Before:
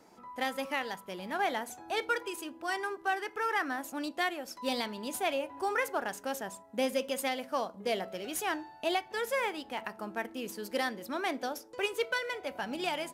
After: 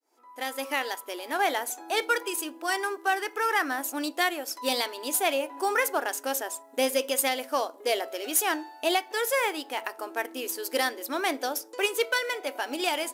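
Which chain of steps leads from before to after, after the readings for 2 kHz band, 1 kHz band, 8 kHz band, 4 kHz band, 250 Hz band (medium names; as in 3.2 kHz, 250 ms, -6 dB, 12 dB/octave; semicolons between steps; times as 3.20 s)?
+5.5 dB, +5.0 dB, +12.0 dB, +7.5 dB, +3.0 dB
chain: fade-in on the opening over 0.84 s; brick-wall FIR high-pass 250 Hz; treble shelf 6.4 kHz +11 dB; trim +5 dB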